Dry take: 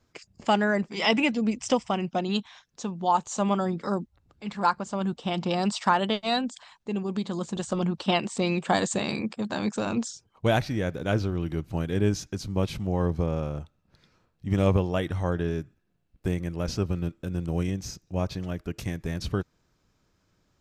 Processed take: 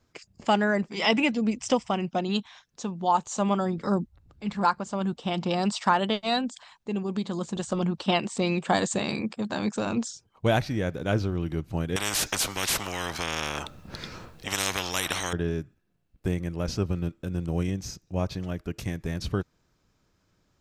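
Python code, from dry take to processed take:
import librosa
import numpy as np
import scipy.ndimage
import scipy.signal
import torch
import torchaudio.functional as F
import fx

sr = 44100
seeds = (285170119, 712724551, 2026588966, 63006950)

y = fx.low_shelf(x, sr, hz=180.0, db=9.0, at=(3.78, 4.65))
y = fx.spectral_comp(y, sr, ratio=10.0, at=(11.96, 15.33))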